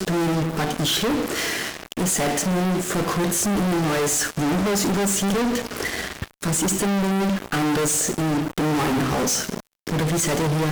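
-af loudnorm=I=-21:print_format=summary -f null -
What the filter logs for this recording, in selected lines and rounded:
Input Integrated:    -22.1 LUFS
Input True Peak:     -16.2 dBTP
Input LRA:             1.0 LU
Input Threshold:     -32.2 LUFS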